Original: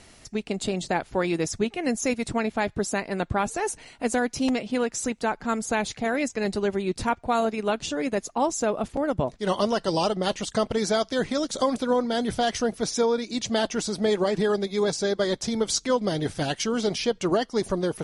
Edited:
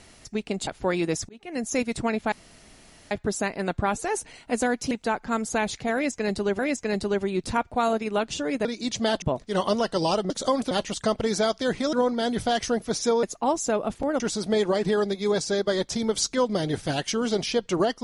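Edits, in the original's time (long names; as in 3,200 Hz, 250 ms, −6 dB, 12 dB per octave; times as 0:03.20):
0:00.67–0:00.98: remove
0:01.60–0:02.09: fade in
0:02.63: splice in room tone 0.79 s
0:04.43–0:05.08: remove
0:06.11–0:06.76: repeat, 2 plays
0:08.17–0:09.14: swap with 0:13.15–0:13.72
0:11.44–0:11.85: move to 0:10.22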